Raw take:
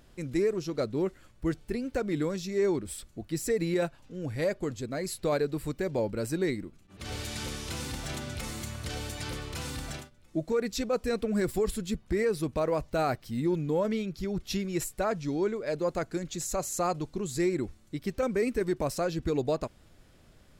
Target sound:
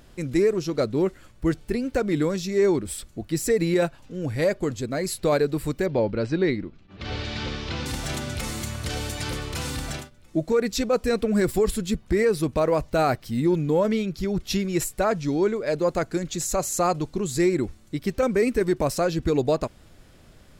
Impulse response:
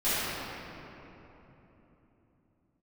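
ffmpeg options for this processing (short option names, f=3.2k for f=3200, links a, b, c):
-filter_complex "[0:a]asettb=1/sr,asplit=3[a][b][c];[a]atrim=end=5.864[d];[b]atrim=start=5.86:end=7.86,asetpts=PTS-STARTPTS,afade=t=in:d=0.004:c=qsin,afade=t=out:st=1.996:d=0.004:c=qsin,lowpass=f=4.6k:w=0.5412,lowpass=f=4.6k:w=1.3066[e];[c]atrim=start=7.856[f];[d][e]acrossfade=d=0.004:c1=hsin:c2=qsin[g];[g][f]acrossfade=d=0.004:c1=qsin:c2=hsin,volume=6.5dB"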